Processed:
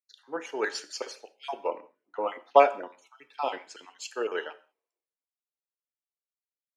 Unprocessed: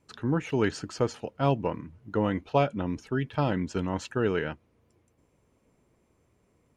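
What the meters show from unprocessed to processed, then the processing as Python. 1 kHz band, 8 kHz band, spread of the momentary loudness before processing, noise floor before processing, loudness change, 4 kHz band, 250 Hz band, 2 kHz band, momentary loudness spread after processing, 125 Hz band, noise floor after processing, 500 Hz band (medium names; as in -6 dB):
+4.5 dB, +2.5 dB, 7 LU, -70 dBFS, 0.0 dB, +1.0 dB, -14.5 dB, 0.0 dB, 22 LU, under -35 dB, under -85 dBFS, +0.5 dB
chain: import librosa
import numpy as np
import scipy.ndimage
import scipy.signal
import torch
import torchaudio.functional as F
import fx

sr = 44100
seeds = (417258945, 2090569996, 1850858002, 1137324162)

y = fx.spec_dropout(x, sr, seeds[0], share_pct=31)
y = scipy.signal.sosfilt(scipy.signal.butter(4, 430.0, 'highpass', fs=sr, output='sos'), y)
y = fx.notch(y, sr, hz=1400.0, q=29.0)
y = fx.rev_gated(y, sr, seeds[1], gate_ms=230, shape='falling', drr_db=10.0)
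y = fx.band_widen(y, sr, depth_pct=100)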